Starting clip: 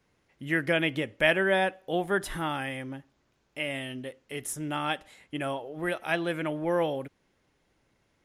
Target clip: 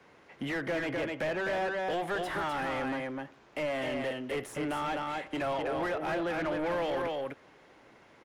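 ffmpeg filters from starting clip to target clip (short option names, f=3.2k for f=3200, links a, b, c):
-filter_complex "[0:a]acrossover=split=140|550|1300[a][b][c][d];[a]acompressor=threshold=-54dB:ratio=4[e];[b]acompressor=threshold=-43dB:ratio=4[f];[c]acompressor=threshold=-43dB:ratio=4[g];[d]acompressor=threshold=-44dB:ratio=4[h];[e][f][g][h]amix=inputs=4:normalize=0,aecho=1:1:254:0.501,asplit=2[i][j];[j]highpass=f=720:p=1,volume=26dB,asoftclip=type=tanh:threshold=-22.5dB[k];[i][k]amix=inputs=2:normalize=0,lowpass=f=1.1k:p=1,volume=-6dB"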